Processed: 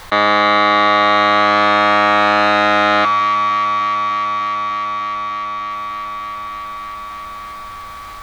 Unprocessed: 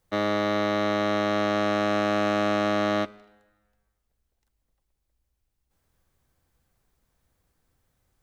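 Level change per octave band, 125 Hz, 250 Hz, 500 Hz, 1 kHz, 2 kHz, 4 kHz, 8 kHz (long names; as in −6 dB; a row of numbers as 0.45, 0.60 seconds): +2.5 dB, +4.0 dB, +7.5 dB, +18.0 dB, +16.5 dB, +15.0 dB, can't be measured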